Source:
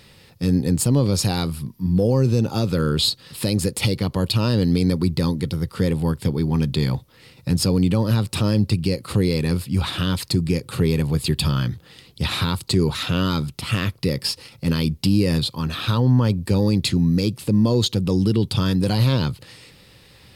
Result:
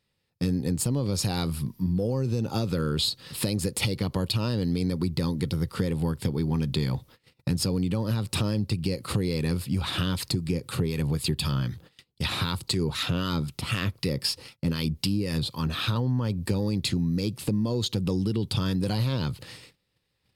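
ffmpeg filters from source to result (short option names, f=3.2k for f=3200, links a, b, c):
-filter_complex "[0:a]asettb=1/sr,asplit=3[a][b][c];[a]atrim=end=10.314[d];[b]atrim=start=10.31:end=15.96,asetpts=PTS-STARTPTS,afade=t=in:d=0.004:c=qsin,afade=t=out:st=5.646:d=0.004:c=qsin,acrossover=split=1000[e][f];[e]aeval=exprs='val(0)*(1-0.5/2+0.5/2*cos(2*PI*3.9*n/s))':c=same[g];[f]aeval=exprs='val(0)*(1-0.5/2-0.5/2*cos(2*PI*3.9*n/s))':c=same[h];[g][h]amix=inputs=2:normalize=0[i];[c]atrim=start=15.956[j];[d][i]acrossfade=d=0.004:c1=hsin:c2=qsin[k];[k][j]acrossfade=d=0.004:c1=qsin:c2=hsin,agate=range=-27dB:threshold=-44dB:ratio=16:detection=peak,acompressor=threshold=-23dB:ratio=6"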